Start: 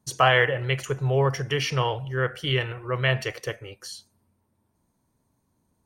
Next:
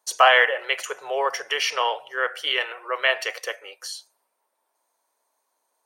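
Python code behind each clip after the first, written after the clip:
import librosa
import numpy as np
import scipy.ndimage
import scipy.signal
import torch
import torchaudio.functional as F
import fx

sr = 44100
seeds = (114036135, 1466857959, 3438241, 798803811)

y = scipy.signal.sosfilt(scipy.signal.butter(4, 550.0, 'highpass', fs=sr, output='sos'), x)
y = y * 10.0 ** (4.5 / 20.0)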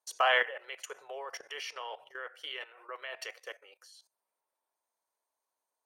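y = fx.level_steps(x, sr, step_db=16)
y = y * 10.0 ** (-8.5 / 20.0)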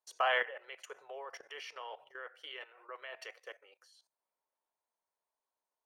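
y = fx.high_shelf(x, sr, hz=4200.0, db=-8.5)
y = y * 10.0 ** (-3.5 / 20.0)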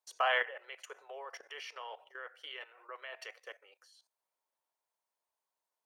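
y = fx.highpass(x, sr, hz=390.0, slope=6)
y = y * 10.0 ** (1.0 / 20.0)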